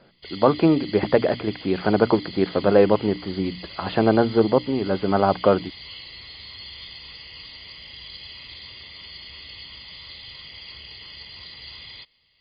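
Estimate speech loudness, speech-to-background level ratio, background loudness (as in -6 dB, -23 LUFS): -21.0 LUFS, 17.0 dB, -38.0 LUFS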